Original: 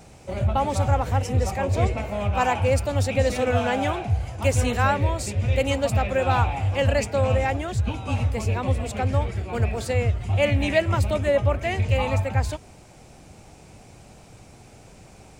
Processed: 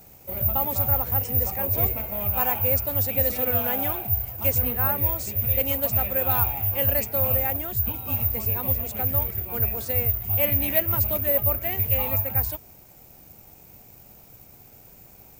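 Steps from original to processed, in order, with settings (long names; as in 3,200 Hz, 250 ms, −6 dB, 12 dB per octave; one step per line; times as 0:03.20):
0:04.58–0:04.98: high-frequency loss of the air 310 metres
bad sample-rate conversion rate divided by 3×, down none, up zero stuff
level −6.5 dB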